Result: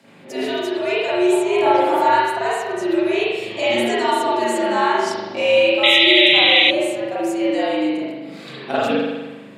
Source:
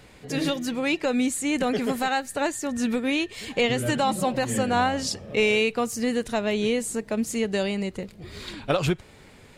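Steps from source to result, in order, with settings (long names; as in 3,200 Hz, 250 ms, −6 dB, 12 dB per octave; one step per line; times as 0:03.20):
0:03.51–0:04.93: parametric band 6,500 Hz +5.5 dB 1.1 octaves
spring reverb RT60 1.2 s, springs 40 ms, chirp 40 ms, DRR −9 dB
frequency shifter +110 Hz
0:01.32–0:02.39: parametric band 870 Hz +11 dB 0.79 octaves
0:05.83–0:06.71: sound drawn into the spectrogram noise 1,900–4,000 Hz −9 dBFS
level −4.5 dB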